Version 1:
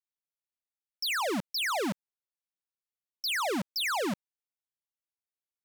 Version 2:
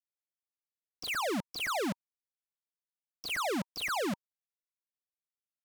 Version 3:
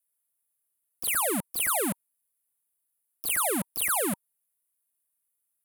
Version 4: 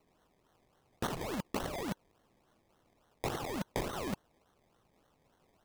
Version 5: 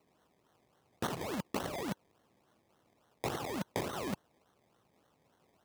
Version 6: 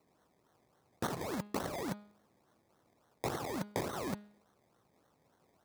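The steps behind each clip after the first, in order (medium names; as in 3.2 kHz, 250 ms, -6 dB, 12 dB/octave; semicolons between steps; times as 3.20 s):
median filter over 25 samples; band-stop 940 Hz, Q 14; in parallel at -8 dB: hard clipper -34.5 dBFS, distortion -14 dB; on the sum: trim -3.5 dB
resonant high shelf 7.7 kHz +13 dB, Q 3; trim +3 dB
compressor with a negative ratio -33 dBFS, ratio -0.5; decimation with a swept rate 25×, swing 60% 3.5 Hz; saturation -24 dBFS, distortion -13 dB
high-pass 83 Hz
peaking EQ 2.9 kHz -7.5 dB 0.4 oct; de-hum 206.8 Hz, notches 23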